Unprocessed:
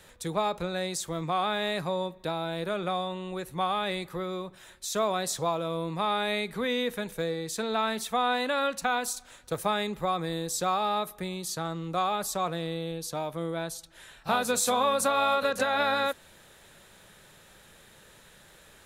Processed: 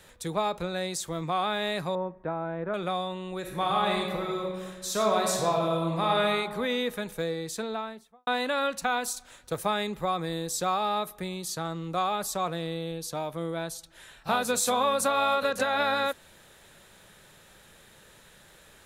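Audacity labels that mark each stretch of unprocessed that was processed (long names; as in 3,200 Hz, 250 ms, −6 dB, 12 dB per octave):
1.950000	2.740000	low-pass filter 1,800 Hz 24 dB per octave
3.390000	6.210000	thrown reverb, RT60 1.5 s, DRR 0 dB
7.410000	8.270000	fade out and dull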